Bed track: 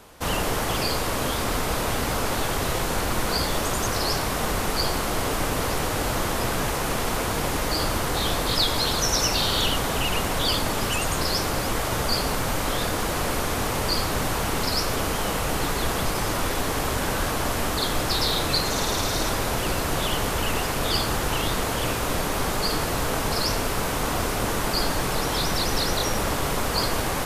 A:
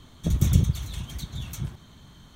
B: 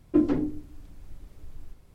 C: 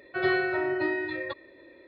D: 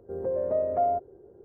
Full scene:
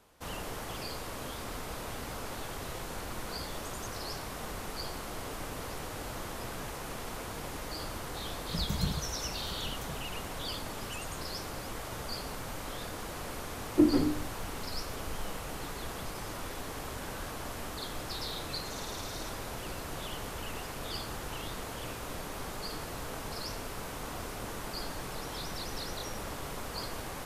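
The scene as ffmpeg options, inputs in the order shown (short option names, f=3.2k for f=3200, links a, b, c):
-filter_complex "[0:a]volume=-14.5dB[a];[1:a]aecho=1:1:4.8:0.65,atrim=end=2.35,asetpts=PTS-STARTPTS,volume=-12dB,afade=t=in:d=0.004:c=hsin,afade=t=out:st=2.346:d=0.004:c=hsin,adelay=8280[b];[2:a]atrim=end=1.94,asetpts=PTS-STARTPTS,volume=-1.5dB,afade=t=in:d=0.004:c=hsin,afade=t=out:st=1.936:d=0.004:c=hsin,adelay=601524S[c];[a][b][c]amix=inputs=3:normalize=0"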